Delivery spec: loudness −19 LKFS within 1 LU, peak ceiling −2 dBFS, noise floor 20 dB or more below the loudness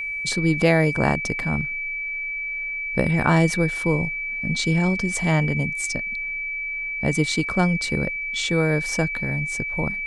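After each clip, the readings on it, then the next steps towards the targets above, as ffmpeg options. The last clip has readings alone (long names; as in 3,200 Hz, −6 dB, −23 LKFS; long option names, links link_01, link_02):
interfering tone 2,300 Hz; level of the tone −26 dBFS; integrated loudness −22.5 LKFS; sample peak −4.5 dBFS; target loudness −19.0 LKFS
→ -af "bandreject=frequency=2300:width=30"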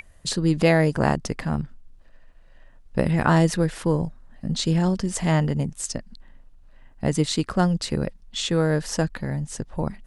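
interfering tone none found; integrated loudness −24.0 LKFS; sample peak −4.0 dBFS; target loudness −19.0 LKFS
→ -af "volume=5dB,alimiter=limit=-2dB:level=0:latency=1"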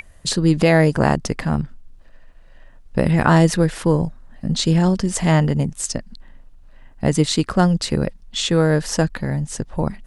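integrated loudness −19.0 LKFS; sample peak −2.0 dBFS; background noise floor −46 dBFS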